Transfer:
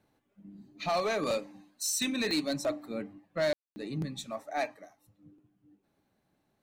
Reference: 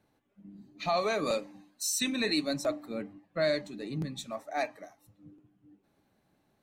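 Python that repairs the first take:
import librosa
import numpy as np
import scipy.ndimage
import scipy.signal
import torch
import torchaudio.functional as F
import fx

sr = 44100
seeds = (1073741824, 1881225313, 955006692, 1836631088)

y = fx.fix_declip(x, sr, threshold_db=-24.0)
y = fx.fix_declick_ar(y, sr, threshold=10.0)
y = fx.fix_ambience(y, sr, seeds[0], print_start_s=5.79, print_end_s=6.29, start_s=3.53, end_s=3.76)
y = fx.fix_level(y, sr, at_s=4.74, step_db=3.5)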